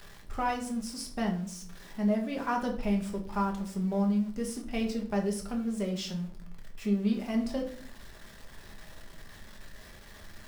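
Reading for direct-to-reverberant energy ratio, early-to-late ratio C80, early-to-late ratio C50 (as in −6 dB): 1.0 dB, 13.5 dB, 9.5 dB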